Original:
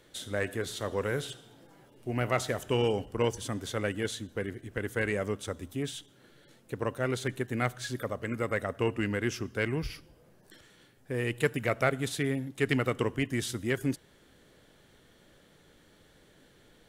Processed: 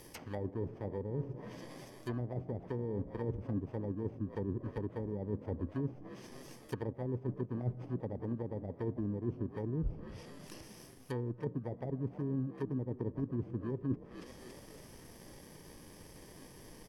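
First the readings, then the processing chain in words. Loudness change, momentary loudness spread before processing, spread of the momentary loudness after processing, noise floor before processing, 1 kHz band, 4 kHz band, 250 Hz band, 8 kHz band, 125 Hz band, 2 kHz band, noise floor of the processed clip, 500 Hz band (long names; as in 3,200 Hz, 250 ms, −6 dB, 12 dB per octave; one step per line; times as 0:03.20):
−7.5 dB, 9 LU, 16 LU, −61 dBFS, −12.5 dB, −19.5 dB, −4.0 dB, −16.5 dB, −3.0 dB, −22.0 dB, −55 dBFS, −9.0 dB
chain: samples in bit-reversed order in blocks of 32 samples
reversed playback
downward compressor 12 to 1, threshold −38 dBFS, peak gain reduction 18 dB
reversed playback
echo with shifted repeats 280 ms, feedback 56%, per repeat +56 Hz, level −16.5 dB
treble cut that deepens with the level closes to 410 Hz, closed at −38.5 dBFS
level +8 dB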